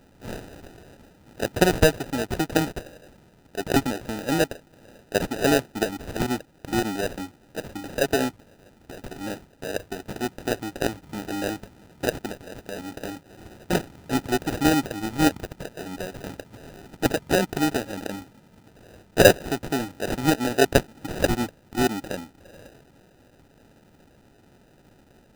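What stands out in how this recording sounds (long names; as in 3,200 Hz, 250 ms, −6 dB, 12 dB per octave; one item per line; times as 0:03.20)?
aliases and images of a low sample rate 1,100 Hz, jitter 0%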